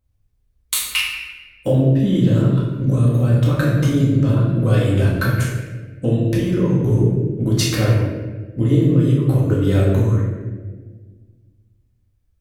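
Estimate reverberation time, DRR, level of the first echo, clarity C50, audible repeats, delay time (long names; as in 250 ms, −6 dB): 1.4 s, −6.5 dB, no echo audible, 0.5 dB, no echo audible, no echo audible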